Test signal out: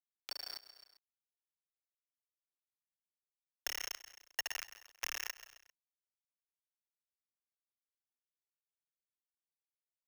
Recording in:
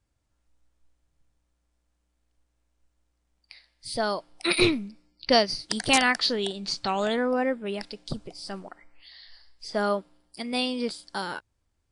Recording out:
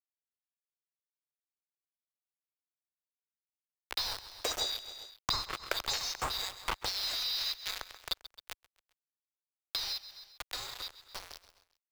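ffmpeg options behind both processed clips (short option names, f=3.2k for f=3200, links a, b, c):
-filter_complex "[0:a]afftfilt=real='real(if(lt(b,736),b+184*(1-2*mod(floor(b/184),2)),b),0)':imag='imag(if(lt(b,736),b+184*(1-2*mod(floor(b/184),2)),b),0)':win_size=2048:overlap=0.75,aresample=32000,aresample=44100,agate=range=-30dB:threshold=-55dB:ratio=16:detection=peak,flanger=delay=4.7:depth=6:regen=65:speed=0.35:shape=sinusoidal,acrusher=bits=4:mix=0:aa=0.000001,asplit=2[a][b];[b]aecho=0:1:132|264|396:0.106|0.0455|0.0196[c];[a][c]amix=inputs=2:normalize=0,aeval=exprs='val(0)*sin(2*PI*480*n/s)':c=same,asubboost=boost=8:cutoff=75,acompressor=threshold=-40dB:ratio=12,acrossover=split=350 4100:gain=0.224 1 0.224[d][e][f];[d][e][f]amix=inputs=3:normalize=0,dynaudnorm=f=250:g=21:m=8dB,volume=7.5dB"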